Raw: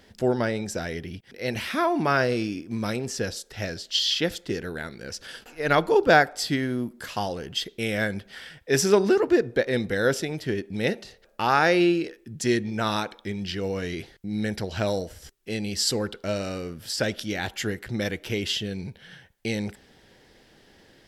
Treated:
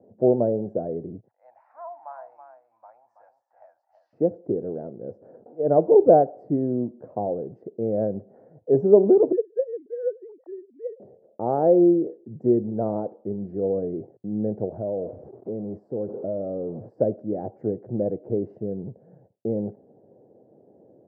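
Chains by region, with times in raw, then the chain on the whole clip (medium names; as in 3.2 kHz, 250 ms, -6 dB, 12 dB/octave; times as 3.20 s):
1.28–4.13 s: elliptic high-pass 860 Hz, stop band 50 dB + delay 327 ms -9 dB
9.32–11.00 s: formants replaced by sine waves + high-pass 780 Hz
14.72–16.90 s: jump at every zero crossing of -33.5 dBFS + compression 3:1, threshold -31 dBFS
whole clip: gate with hold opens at -49 dBFS; elliptic band-pass 110–680 Hz, stop band 60 dB; peaking EQ 500 Hz +7 dB 1.4 oct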